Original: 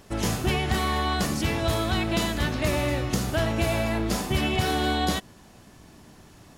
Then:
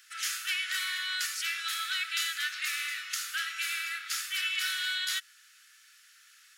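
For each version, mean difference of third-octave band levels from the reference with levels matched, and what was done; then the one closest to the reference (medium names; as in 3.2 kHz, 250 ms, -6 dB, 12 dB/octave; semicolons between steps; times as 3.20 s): 22.5 dB: steep high-pass 1.3 kHz 96 dB/octave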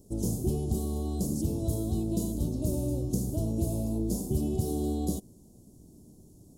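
10.5 dB: Chebyshev band-stop 360–8500 Hz, order 2; trim -2 dB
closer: second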